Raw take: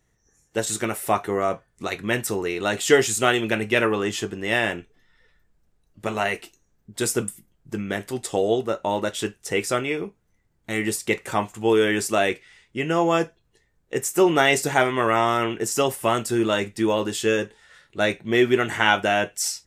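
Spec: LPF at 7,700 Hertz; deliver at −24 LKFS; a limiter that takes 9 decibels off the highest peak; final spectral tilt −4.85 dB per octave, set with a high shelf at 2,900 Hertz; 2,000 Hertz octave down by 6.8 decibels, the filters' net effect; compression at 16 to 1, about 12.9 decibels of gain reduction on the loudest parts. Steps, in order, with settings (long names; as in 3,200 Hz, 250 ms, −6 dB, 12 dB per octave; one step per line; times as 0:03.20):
low-pass filter 7,700 Hz
parametric band 2,000 Hz −6 dB
high-shelf EQ 2,900 Hz −8 dB
downward compressor 16 to 1, threshold −25 dBFS
level +9.5 dB
brickwall limiter −12.5 dBFS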